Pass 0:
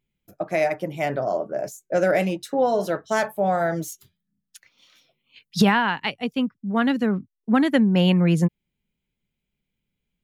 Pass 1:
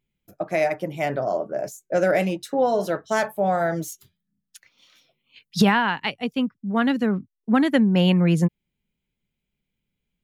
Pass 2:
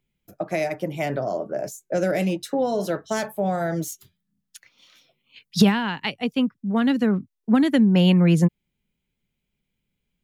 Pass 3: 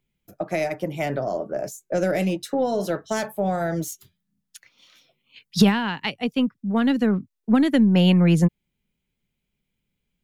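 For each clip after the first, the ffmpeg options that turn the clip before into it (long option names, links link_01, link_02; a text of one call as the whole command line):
ffmpeg -i in.wav -af anull out.wav
ffmpeg -i in.wav -filter_complex "[0:a]acrossover=split=410|3000[link_01][link_02][link_03];[link_02]acompressor=threshold=-28dB:ratio=6[link_04];[link_01][link_04][link_03]amix=inputs=3:normalize=0,volume=2dB" out.wav
ffmpeg -i in.wav -af "aeval=exprs='0.562*(cos(1*acos(clip(val(0)/0.562,-1,1)))-cos(1*PI/2))+0.00794*(cos(6*acos(clip(val(0)/0.562,-1,1)))-cos(6*PI/2))':channel_layout=same" out.wav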